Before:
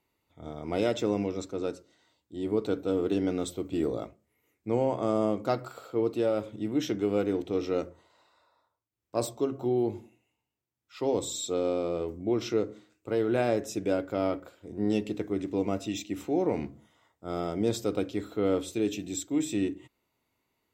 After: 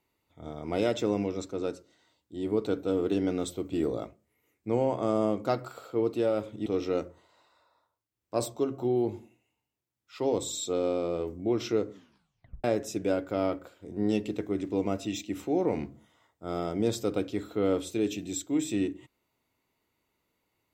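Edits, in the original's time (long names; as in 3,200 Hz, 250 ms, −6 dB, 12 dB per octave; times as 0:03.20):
0:06.66–0:07.47: remove
0:12.71: tape stop 0.74 s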